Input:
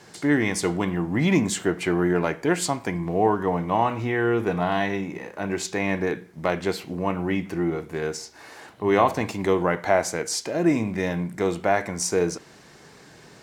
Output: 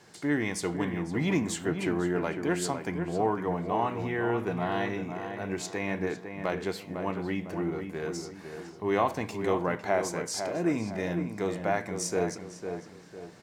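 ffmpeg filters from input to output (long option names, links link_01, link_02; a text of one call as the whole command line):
ffmpeg -i in.wav -filter_complex "[0:a]asplit=2[link_01][link_02];[link_02]adelay=503,lowpass=frequency=2100:poles=1,volume=-7dB,asplit=2[link_03][link_04];[link_04]adelay=503,lowpass=frequency=2100:poles=1,volume=0.4,asplit=2[link_05][link_06];[link_06]adelay=503,lowpass=frequency=2100:poles=1,volume=0.4,asplit=2[link_07][link_08];[link_08]adelay=503,lowpass=frequency=2100:poles=1,volume=0.4,asplit=2[link_09][link_10];[link_10]adelay=503,lowpass=frequency=2100:poles=1,volume=0.4[link_11];[link_01][link_03][link_05][link_07][link_09][link_11]amix=inputs=6:normalize=0,volume=-7dB" out.wav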